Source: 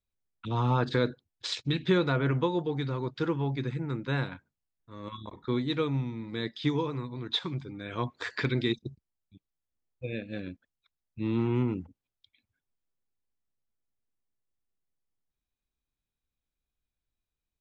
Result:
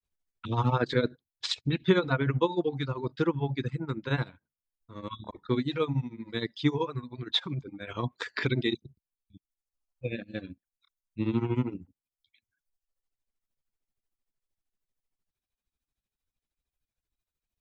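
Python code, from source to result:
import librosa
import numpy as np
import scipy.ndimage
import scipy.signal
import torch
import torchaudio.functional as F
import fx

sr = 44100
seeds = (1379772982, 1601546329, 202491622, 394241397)

y = fx.granulator(x, sr, seeds[0], grain_ms=117.0, per_s=13.0, spray_ms=17.0, spread_st=0)
y = fx.dereverb_blind(y, sr, rt60_s=1.1)
y = y * librosa.db_to_amplitude(4.0)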